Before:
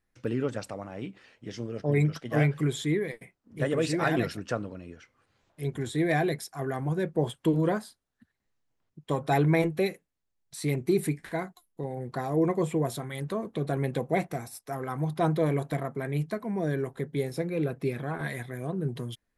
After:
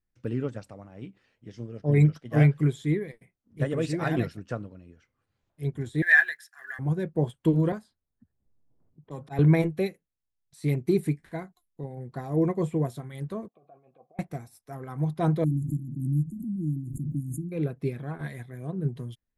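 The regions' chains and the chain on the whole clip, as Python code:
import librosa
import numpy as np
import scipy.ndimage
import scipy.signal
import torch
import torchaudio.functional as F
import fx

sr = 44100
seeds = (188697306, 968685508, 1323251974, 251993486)

y = fx.chain(x, sr, fx.block_float(bits=7),
    fx.highpass_res(hz=1700.0, q=10.0),
    fx.notch(hz=2200.0, q=8.1), at=(6.02, 6.79))
y = fx.chain(y, sr, fx.env_lowpass(base_hz=630.0, full_db=-28.0),
    fx.auto_swell(attack_ms=113.0),
    fx.band_squash(depth_pct=70), at=(7.72, 9.39))
y = fx.chain(y, sr, fx.air_absorb(metres=370.0),
    fx.over_compress(threshold_db=-30.0, ratio=-0.5),
    fx.vowel_filter(vowel='a'), at=(13.48, 14.19))
y = fx.chain(y, sr, fx.brickwall_bandstop(low_hz=350.0, high_hz=6400.0),
    fx.peak_eq(hz=3800.0, db=-10.5, octaves=1.3),
    fx.pre_swell(db_per_s=31.0), at=(15.44, 17.52))
y = fx.low_shelf(y, sr, hz=220.0, db=10.0)
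y = fx.upward_expand(y, sr, threshold_db=-39.0, expansion=1.5)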